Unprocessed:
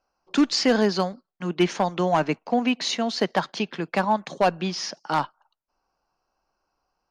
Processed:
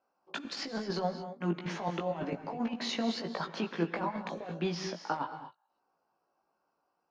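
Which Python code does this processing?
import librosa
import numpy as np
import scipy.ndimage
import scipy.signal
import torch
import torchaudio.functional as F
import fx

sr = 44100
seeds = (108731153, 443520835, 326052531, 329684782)

y = scipy.signal.sosfilt(scipy.signal.butter(2, 180.0, 'highpass', fs=sr, output='sos'), x)
y = fx.over_compress(y, sr, threshold_db=-26.0, ratio=-0.5)
y = fx.lowpass(y, sr, hz=1500.0, slope=6)
y = fx.doubler(y, sr, ms=18.0, db=-4.5)
y = fx.rev_gated(y, sr, seeds[0], gate_ms=260, shape='rising', drr_db=9.5)
y = y * librosa.db_to_amplitude(-6.0)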